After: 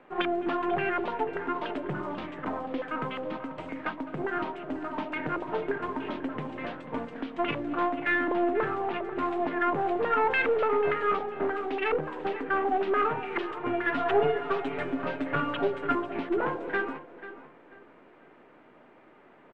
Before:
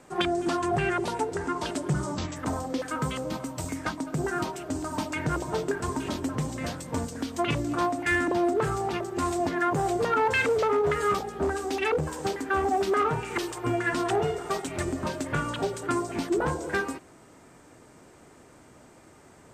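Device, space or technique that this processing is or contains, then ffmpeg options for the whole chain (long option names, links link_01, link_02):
crystal radio: -filter_complex "[0:a]highpass=240,lowpass=2600,aeval=exprs='if(lt(val(0),0),0.708*val(0),val(0))':channel_layout=same,highshelf=frequency=4100:width_type=q:width=1.5:gain=-10,asettb=1/sr,asplit=3[link_01][link_02][link_03];[link_01]atrim=end=13.934[link_04];[link_02]atrim=start=13.93:end=15.95,asetpts=PTS-STARTPTS,afade=type=in:duration=0.004:curve=qsin,afade=type=out:start_time=2.016:duration=0.004:curve=qsin,aecho=1:1:7.1:0.91,atrim=end_sample=89082[link_05];[link_03]atrim=start=15.946[link_06];[link_04][link_05]acrossfade=duration=0.004:curve1=hsin:curve2=qsin[link_07];[link_07][link_06]acrossfade=duration=0.004:curve1=qsin:curve2=hsin,asplit=2[link_08][link_09];[link_09]adelay=490,lowpass=frequency=4400:poles=1,volume=-14dB,asplit=2[link_10][link_11];[link_11]adelay=490,lowpass=frequency=4400:poles=1,volume=0.3,asplit=2[link_12][link_13];[link_13]adelay=490,lowpass=frequency=4400:poles=1,volume=0.3[link_14];[link_08][link_10][link_12][link_14]amix=inputs=4:normalize=0"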